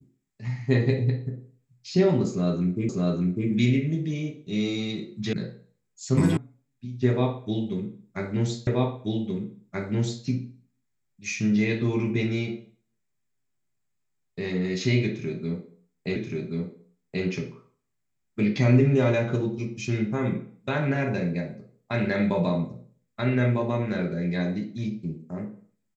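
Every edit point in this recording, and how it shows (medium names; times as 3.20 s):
2.89 s: repeat of the last 0.6 s
5.33 s: sound stops dead
6.37 s: sound stops dead
8.67 s: repeat of the last 1.58 s
16.16 s: repeat of the last 1.08 s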